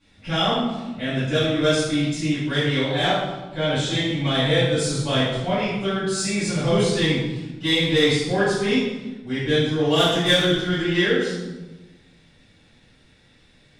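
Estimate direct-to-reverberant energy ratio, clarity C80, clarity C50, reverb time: -14.0 dB, 2.5 dB, -1.0 dB, 1.1 s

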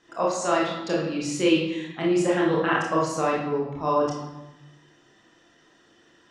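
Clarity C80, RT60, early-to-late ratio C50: 6.0 dB, 1.0 s, 2.5 dB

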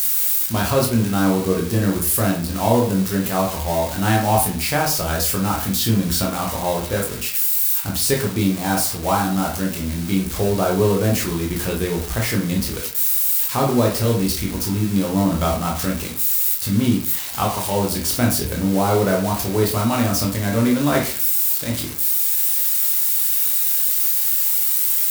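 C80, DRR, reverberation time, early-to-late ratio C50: 12.0 dB, -1.0 dB, 0.45 s, 6.5 dB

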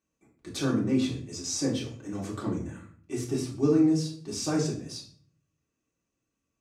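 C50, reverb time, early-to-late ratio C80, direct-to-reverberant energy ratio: 7.5 dB, 0.50 s, 11.5 dB, -4.5 dB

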